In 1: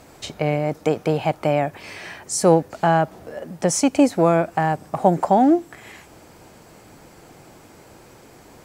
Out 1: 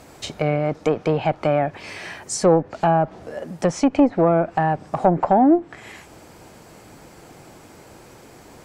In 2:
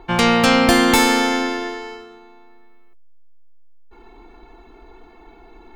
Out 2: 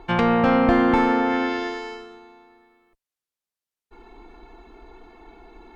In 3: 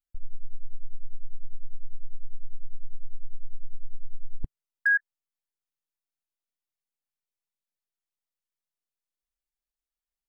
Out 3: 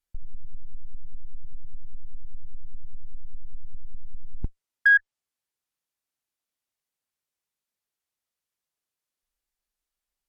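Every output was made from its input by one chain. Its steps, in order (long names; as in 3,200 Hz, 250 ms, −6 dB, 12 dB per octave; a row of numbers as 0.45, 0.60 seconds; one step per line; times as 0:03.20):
one-sided soft clipper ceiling −5.5 dBFS
treble cut that deepens with the level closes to 1,400 Hz, closed at −14 dBFS
loudness normalisation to −20 LKFS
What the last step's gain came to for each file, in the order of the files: +1.5, −1.0, +5.5 decibels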